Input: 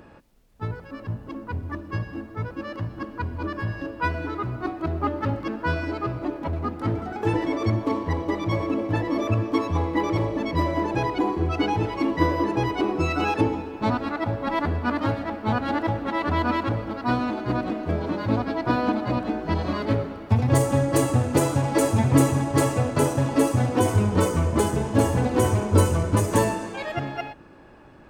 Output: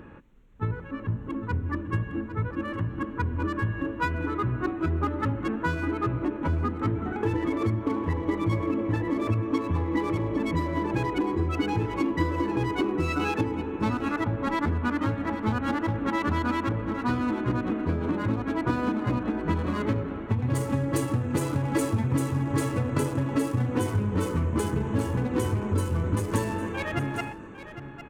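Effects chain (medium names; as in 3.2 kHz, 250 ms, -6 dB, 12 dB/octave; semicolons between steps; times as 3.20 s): local Wiener filter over 9 samples; peaking EQ 680 Hz -10.5 dB 0.64 oct; compression, threshold -27 dBFS, peak gain reduction 14 dB; delay 805 ms -12.5 dB; trim +4 dB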